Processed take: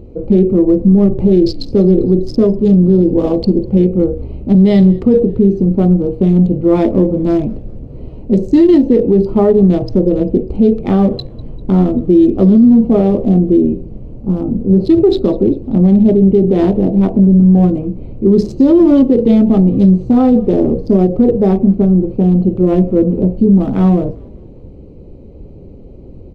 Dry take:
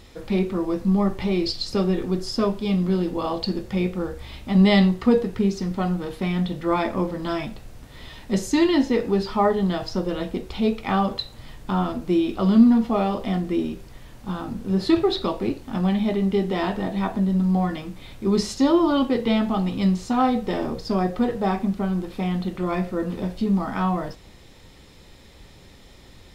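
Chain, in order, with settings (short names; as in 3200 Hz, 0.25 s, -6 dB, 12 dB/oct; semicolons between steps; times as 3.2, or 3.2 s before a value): Wiener smoothing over 25 samples; resonant low shelf 670 Hz +12 dB, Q 1.5; limiter -4 dBFS, peak gain reduction 11.5 dB; frequency-shifting echo 0.198 s, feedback 56%, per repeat -65 Hz, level -24 dB; gain +2 dB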